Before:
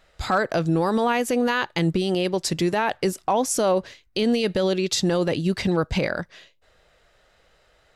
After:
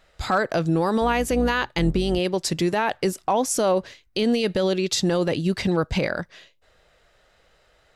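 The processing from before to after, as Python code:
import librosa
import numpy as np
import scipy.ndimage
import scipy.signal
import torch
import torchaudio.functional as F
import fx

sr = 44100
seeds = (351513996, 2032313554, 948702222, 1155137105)

y = fx.octave_divider(x, sr, octaves=2, level_db=-4.0, at=(1.01, 2.19))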